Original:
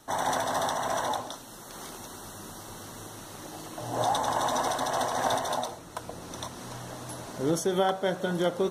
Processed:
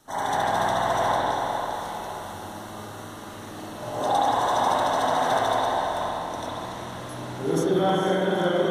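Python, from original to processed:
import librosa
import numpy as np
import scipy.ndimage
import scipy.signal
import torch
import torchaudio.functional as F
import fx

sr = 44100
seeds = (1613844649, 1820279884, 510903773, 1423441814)

y = fx.echo_diffused(x, sr, ms=454, feedback_pct=42, wet_db=-6.5)
y = fx.rev_spring(y, sr, rt60_s=1.9, pass_ms=(43, 48), chirp_ms=30, drr_db=-8.0)
y = F.gain(torch.from_numpy(y), -4.0).numpy()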